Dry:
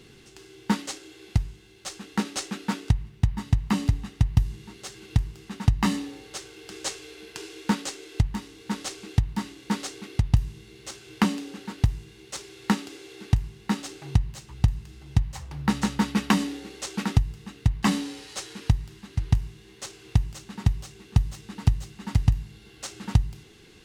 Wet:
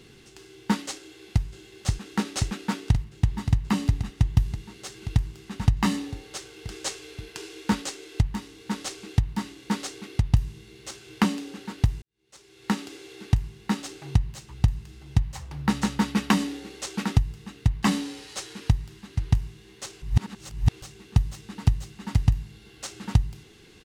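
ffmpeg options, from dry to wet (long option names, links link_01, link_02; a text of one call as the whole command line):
ffmpeg -i in.wav -filter_complex "[0:a]asplit=2[link_01][link_02];[link_02]afade=type=in:start_time=0.99:duration=0.01,afade=type=out:start_time=1.45:duration=0.01,aecho=0:1:530|1060|1590|2120|2650|3180|3710|4240|4770|5300|5830|6360:0.749894|0.63741|0.541799|0.460529|0.391449|0.332732|0.282822|0.240399|0.204339|0.173688|0.147635|0.12549[link_03];[link_01][link_03]amix=inputs=2:normalize=0,asplit=4[link_04][link_05][link_06][link_07];[link_04]atrim=end=12.02,asetpts=PTS-STARTPTS,afade=type=out:start_time=12.016:duration=0.004:curve=hsin[link_08];[link_05]atrim=start=12.02:end=20.022,asetpts=PTS-STARTPTS,afade=type=in:duration=0.8:curve=qua[link_09];[link_06]atrim=start=20.018:end=20.822,asetpts=PTS-STARTPTS,areverse[link_10];[link_07]atrim=start=20.818[link_11];[link_08][link_09]concat=n=2:v=0:a=1[link_12];[link_12][link_10]acrossfade=duration=0.004:curve1=hsin:curve2=hsin[link_13];[link_13][link_11]acrossfade=duration=0.004:curve1=hsin:curve2=hsin" out.wav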